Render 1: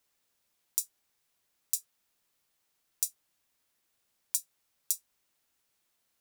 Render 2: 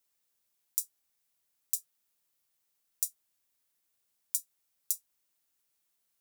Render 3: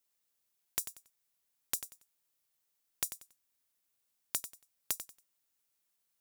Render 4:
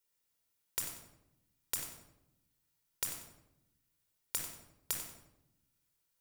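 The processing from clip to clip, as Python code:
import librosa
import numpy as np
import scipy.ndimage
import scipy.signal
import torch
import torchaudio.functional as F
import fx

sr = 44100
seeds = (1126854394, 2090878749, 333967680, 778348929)

y1 = fx.high_shelf(x, sr, hz=6400.0, db=8.5)
y1 = F.gain(torch.from_numpy(y1), -7.5).numpy()
y2 = (np.mod(10.0 ** (7.0 / 20.0) * y1 + 1.0, 2.0) - 1.0) / 10.0 ** (7.0 / 20.0)
y2 = fx.echo_feedback(y2, sr, ms=93, feedback_pct=25, wet_db=-11.0)
y2 = F.gain(torch.from_numpy(y2), -2.5).numpy()
y3 = fx.room_shoebox(y2, sr, seeds[0], volume_m3=2900.0, walls='furnished', distance_m=4.6)
y3 = F.gain(torch.from_numpy(y3), -3.0).numpy()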